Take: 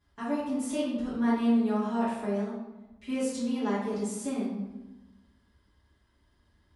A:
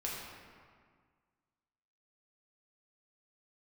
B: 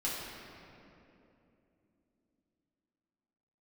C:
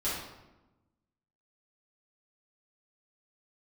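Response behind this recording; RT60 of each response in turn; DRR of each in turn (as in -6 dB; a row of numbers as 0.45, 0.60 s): C; 1.8, 2.9, 1.0 s; -5.0, -7.5, -11.5 dB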